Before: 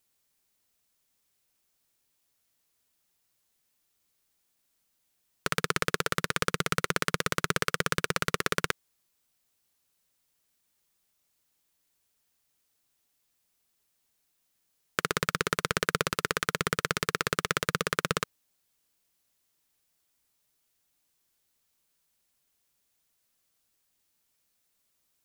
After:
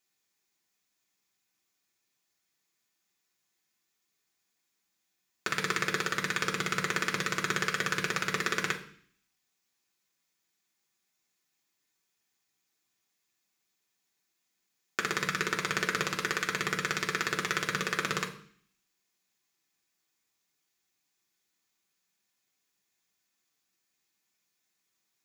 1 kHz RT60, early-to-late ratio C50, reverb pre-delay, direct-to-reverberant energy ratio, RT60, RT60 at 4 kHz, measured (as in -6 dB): 0.50 s, 12.0 dB, 3 ms, -0.5 dB, 0.55 s, 0.60 s